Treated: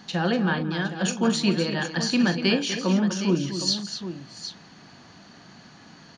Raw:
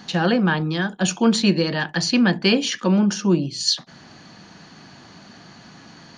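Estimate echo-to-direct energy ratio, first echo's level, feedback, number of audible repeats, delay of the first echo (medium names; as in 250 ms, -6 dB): -6.0 dB, -12.0 dB, no regular repeats, 4, 42 ms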